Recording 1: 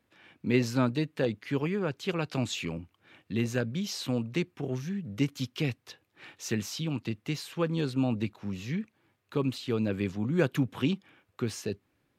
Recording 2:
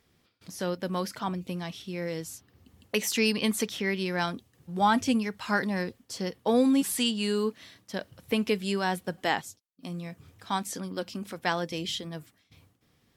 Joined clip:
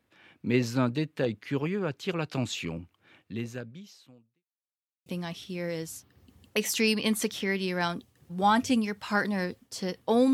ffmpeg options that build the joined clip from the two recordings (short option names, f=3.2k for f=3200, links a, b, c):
-filter_complex "[0:a]apad=whole_dur=10.33,atrim=end=10.33,asplit=2[a][b];[a]atrim=end=4.46,asetpts=PTS-STARTPTS,afade=t=out:st=3.01:d=1.45:c=qua[c];[b]atrim=start=4.46:end=5.06,asetpts=PTS-STARTPTS,volume=0[d];[1:a]atrim=start=1.44:end=6.71,asetpts=PTS-STARTPTS,afade=t=in:d=0.004:c=hsin[e];[c][d][e]concat=n=3:v=0:a=1"